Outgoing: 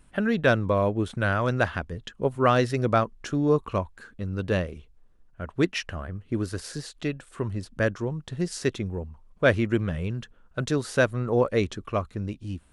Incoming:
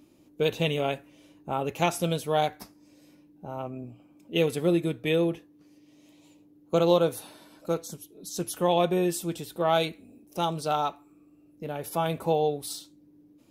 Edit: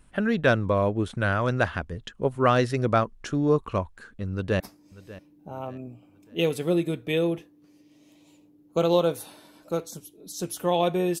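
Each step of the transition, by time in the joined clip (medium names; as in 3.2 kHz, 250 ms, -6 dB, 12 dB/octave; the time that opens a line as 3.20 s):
outgoing
4.32–4.60 s: echo throw 590 ms, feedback 40%, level -18 dB
4.60 s: go over to incoming from 2.57 s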